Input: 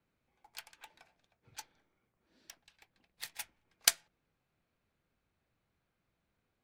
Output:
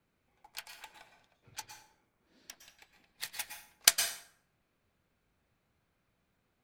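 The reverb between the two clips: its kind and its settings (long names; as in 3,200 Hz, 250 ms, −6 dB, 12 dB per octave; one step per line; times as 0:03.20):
dense smooth reverb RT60 0.59 s, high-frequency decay 0.75×, pre-delay 100 ms, DRR 5.5 dB
level +3.5 dB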